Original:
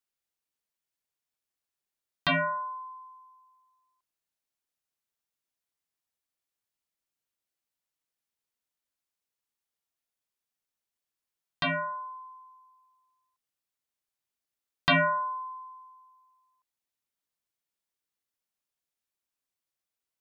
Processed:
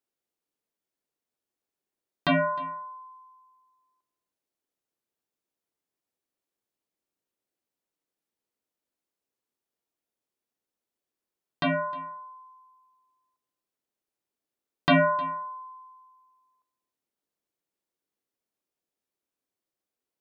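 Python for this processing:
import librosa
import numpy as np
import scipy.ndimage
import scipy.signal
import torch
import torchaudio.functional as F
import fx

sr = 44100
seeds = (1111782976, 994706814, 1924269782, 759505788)

p1 = fx.peak_eq(x, sr, hz=350.0, db=13.0, octaves=2.3)
p2 = p1 + fx.echo_single(p1, sr, ms=309, db=-21.0, dry=0)
y = p2 * 10.0 ** (-3.0 / 20.0)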